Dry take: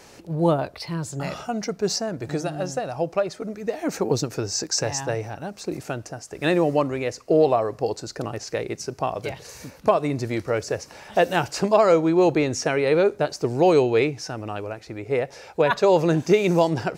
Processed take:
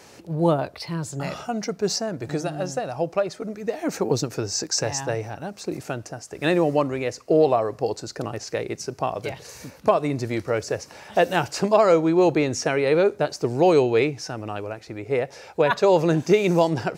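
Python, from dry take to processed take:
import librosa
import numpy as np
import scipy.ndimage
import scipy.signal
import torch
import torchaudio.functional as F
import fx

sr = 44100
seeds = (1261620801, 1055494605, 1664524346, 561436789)

y = scipy.signal.sosfilt(scipy.signal.butter(2, 60.0, 'highpass', fs=sr, output='sos'), x)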